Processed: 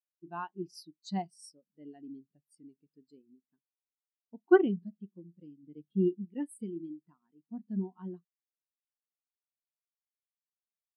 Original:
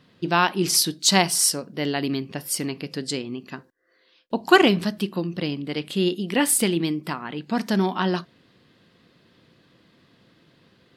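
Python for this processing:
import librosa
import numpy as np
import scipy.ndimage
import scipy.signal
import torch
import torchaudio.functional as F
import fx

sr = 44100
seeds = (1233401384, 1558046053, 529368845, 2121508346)

y = fx.block_float(x, sr, bits=5)
y = fx.low_shelf(y, sr, hz=270.0, db=7.0, at=(5.63, 6.25))
y = fx.spectral_expand(y, sr, expansion=2.5)
y = F.gain(torch.from_numpy(y), -8.5).numpy()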